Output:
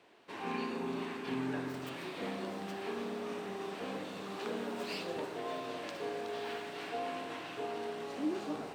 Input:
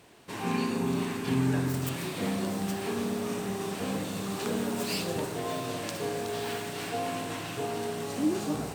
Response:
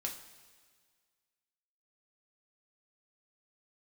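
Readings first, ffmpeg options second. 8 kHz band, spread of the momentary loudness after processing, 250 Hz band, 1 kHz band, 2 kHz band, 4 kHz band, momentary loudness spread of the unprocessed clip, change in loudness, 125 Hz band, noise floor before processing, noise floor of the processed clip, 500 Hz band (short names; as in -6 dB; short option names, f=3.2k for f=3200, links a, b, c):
-16.5 dB, 4 LU, -9.5 dB, -5.0 dB, -5.5 dB, -7.5 dB, 5 LU, -8.0 dB, -16.0 dB, -38 dBFS, -45 dBFS, -5.5 dB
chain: -filter_complex "[0:a]acrossover=split=240 4500:gain=0.158 1 0.178[a][b][c];[a][b][c]amix=inputs=3:normalize=0,volume=-5dB"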